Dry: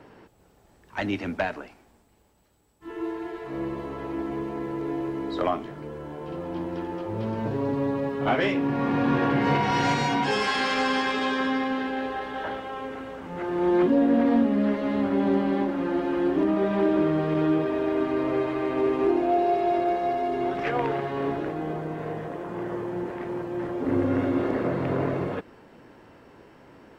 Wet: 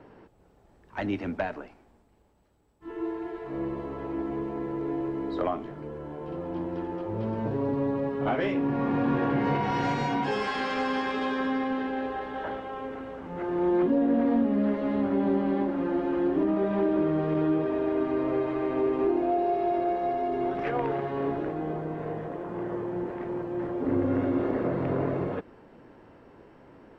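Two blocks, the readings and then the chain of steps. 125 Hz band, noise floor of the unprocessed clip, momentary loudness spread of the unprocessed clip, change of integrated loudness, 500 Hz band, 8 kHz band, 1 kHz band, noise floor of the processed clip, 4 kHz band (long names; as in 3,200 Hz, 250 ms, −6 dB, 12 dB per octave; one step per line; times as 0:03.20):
−2.0 dB, −59 dBFS, 11 LU, −2.5 dB, −2.0 dB, can't be measured, −3.5 dB, −59 dBFS, −8.5 dB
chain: low-shelf EQ 230 Hz −11 dB
downward compressor 2 to 1, threshold −24 dBFS, peak gain reduction 3 dB
spectral tilt −3 dB per octave
level −2 dB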